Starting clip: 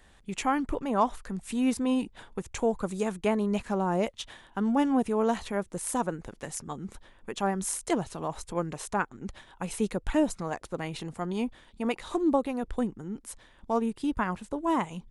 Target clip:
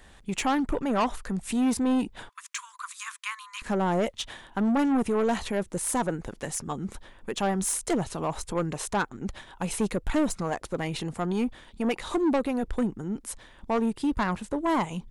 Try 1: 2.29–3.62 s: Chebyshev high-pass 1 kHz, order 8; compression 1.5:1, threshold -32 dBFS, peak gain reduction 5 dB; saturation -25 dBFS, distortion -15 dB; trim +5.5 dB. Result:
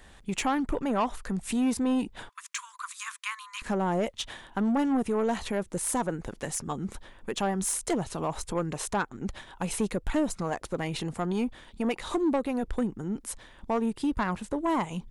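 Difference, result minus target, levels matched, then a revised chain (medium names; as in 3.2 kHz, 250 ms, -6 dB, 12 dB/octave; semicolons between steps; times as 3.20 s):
compression: peak gain reduction +5 dB
2.29–3.62 s: Chebyshev high-pass 1 kHz, order 8; saturation -25 dBFS, distortion -10 dB; trim +5.5 dB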